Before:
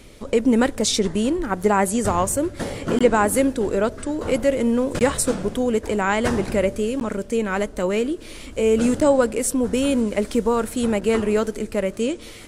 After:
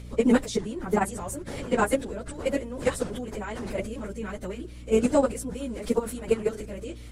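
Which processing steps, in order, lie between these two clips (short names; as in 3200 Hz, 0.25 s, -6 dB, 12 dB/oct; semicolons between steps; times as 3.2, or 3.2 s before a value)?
level quantiser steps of 17 dB; hum 60 Hz, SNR 16 dB; plain phase-vocoder stretch 0.57×; gain +3 dB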